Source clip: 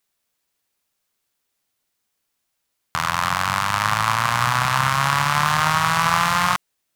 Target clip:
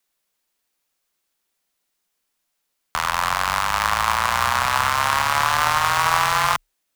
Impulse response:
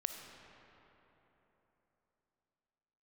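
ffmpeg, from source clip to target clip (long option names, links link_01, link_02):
-af "equalizer=frequency=140:width_type=o:width=0.7:gain=-10.5,afreqshift=-35,acrusher=bits=4:mode=log:mix=0:aa=0.000001"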